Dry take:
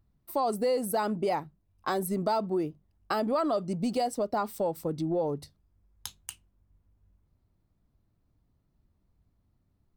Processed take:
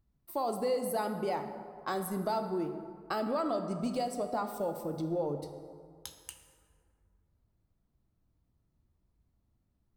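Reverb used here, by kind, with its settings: plate-style reverb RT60 2.1 s, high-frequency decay 0.5×, DRR 6 dB; gain -5 dB

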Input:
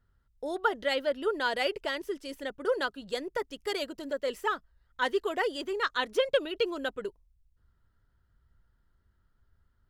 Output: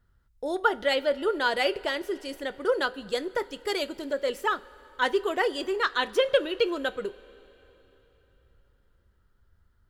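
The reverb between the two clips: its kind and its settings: two-slope reverb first 0.24 s, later 3.7 s, from -19 dB, DRR 12 dB; gain +3.5 dB

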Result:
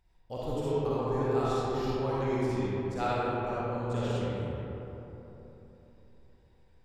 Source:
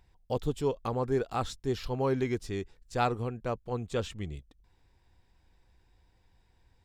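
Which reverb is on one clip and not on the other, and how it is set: digital reverb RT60 3.6 s, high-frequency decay 0.4×, pre-delay 15 ms, DRR -9.5 dB; gain -9 dB

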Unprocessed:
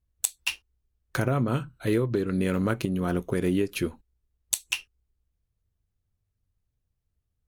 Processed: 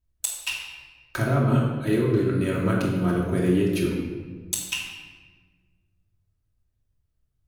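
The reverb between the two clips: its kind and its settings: shoebox room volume 1300 m³, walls mixed, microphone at 2.8 m; gain -3 dB

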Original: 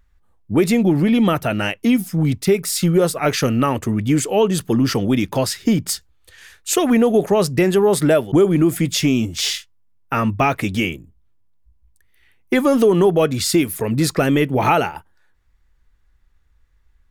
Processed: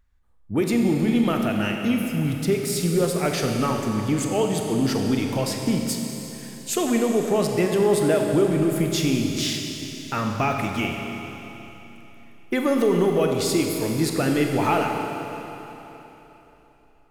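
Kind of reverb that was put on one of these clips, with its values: Schroeder reverb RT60 3.5 s, combs from 30 ms, DRR 2 dB; gain -7 dB

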